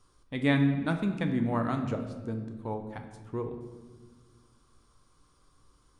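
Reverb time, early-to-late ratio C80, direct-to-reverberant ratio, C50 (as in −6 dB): 1.5 s, 9.5 dB, 5.0 dB, 8.0 dB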